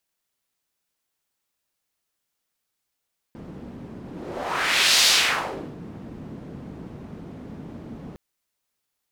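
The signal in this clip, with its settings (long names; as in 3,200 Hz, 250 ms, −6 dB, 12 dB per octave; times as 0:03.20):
pass-by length 4.81 s, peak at 0:01.69, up 1.06 s, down 0.76 s, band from 210 Hz, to 4,400 Hz, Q 1.4, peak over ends 21.5 dB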